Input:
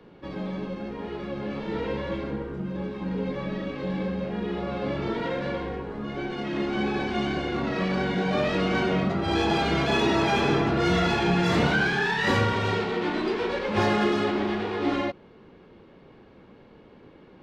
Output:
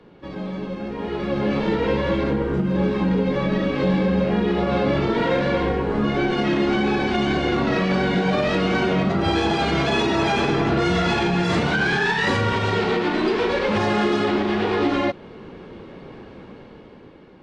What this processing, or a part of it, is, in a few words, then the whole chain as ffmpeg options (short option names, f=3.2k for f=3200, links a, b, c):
low-bitrate web radio: -af "dynaudnorm=f=300:g=9:m=12dB,alimiter=limit=-13.5dB:level=0:latency=1:release=250,volume=2dB" -ar 22050 -c:a aac -b:a 48k